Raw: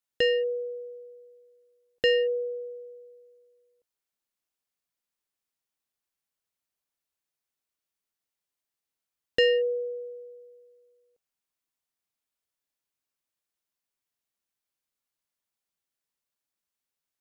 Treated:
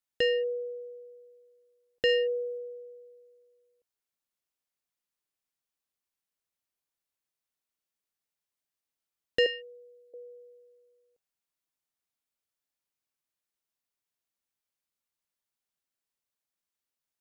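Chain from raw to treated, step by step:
0:02.09–0:02.58: high-shelf EQ 4,000 Hz +6.5 dB
0:09.46–0:10.14: high-pass filter 1,400 Hz 12 dB per octave
level −2.5 dB

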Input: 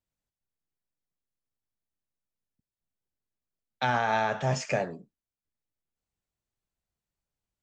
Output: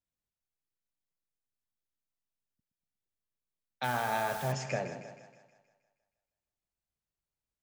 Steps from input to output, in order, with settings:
echo with a time of its own for lows and highs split 630 Hz, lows 120 ms, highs 158 ms, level −10 dB
0:03.83–0:04.51: background noise white −41 dBFS
level −6 dB

